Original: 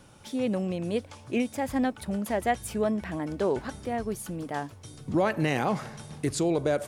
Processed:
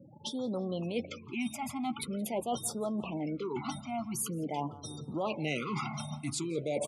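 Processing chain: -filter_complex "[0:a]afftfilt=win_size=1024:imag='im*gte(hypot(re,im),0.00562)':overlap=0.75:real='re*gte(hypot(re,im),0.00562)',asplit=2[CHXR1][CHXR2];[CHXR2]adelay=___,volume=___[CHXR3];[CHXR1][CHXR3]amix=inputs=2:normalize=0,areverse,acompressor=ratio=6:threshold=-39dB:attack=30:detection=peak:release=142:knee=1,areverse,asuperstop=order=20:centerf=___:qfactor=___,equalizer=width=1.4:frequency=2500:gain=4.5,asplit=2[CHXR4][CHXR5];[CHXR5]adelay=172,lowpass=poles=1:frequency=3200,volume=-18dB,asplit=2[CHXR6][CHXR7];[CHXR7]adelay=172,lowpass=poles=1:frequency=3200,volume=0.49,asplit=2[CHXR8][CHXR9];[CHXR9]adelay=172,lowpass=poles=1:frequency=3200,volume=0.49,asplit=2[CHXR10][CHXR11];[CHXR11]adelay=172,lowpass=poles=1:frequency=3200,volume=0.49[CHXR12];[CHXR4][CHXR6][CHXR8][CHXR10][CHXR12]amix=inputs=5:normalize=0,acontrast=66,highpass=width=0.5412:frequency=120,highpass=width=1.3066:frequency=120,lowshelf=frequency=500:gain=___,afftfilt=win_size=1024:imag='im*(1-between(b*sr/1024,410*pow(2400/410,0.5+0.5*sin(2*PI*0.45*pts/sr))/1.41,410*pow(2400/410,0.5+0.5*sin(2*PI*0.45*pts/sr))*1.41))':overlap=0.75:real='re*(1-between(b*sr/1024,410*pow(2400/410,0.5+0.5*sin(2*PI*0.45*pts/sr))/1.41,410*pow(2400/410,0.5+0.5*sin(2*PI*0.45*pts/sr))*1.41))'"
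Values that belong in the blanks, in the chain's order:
13, -12dB, 1700, 3, -3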